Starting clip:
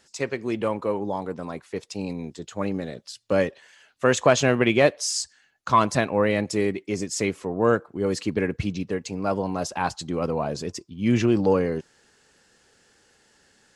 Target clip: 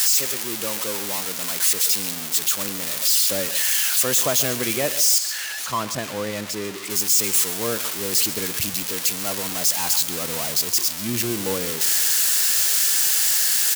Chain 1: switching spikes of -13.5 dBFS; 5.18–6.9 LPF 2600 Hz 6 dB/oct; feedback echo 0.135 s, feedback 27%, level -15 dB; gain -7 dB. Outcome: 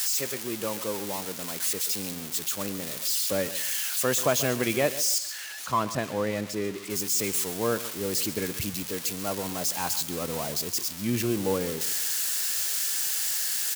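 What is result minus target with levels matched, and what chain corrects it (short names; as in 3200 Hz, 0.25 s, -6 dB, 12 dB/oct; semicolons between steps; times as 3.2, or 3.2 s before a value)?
switching spikes: distortion -9 dB
switching spikes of -4.5 dBFS; 5.18–6.9 LPF 2600 Hz 6 dB/oct; feedback echo 0.135 s, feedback 27%, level -15 dB; gain -7 dB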